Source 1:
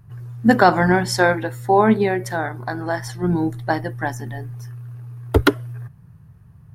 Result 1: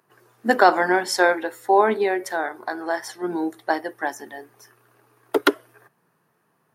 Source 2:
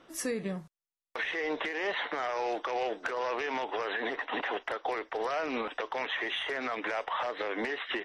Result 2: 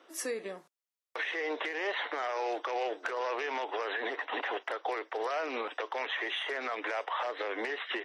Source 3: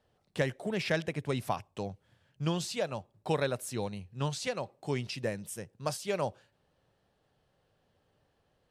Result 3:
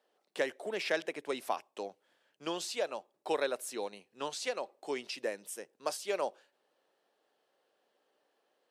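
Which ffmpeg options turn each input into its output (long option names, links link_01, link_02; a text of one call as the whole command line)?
ffmpeg -i in.wav -af "highpass=frequency=310:width=0.5412,highpass=frequency=310:width=1.3066,volume=-1dB" out.wav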